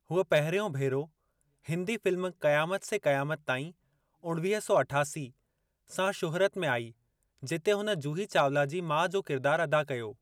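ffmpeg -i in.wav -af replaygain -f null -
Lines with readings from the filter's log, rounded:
track_gain = +10.0 dB
track_peak = 0.133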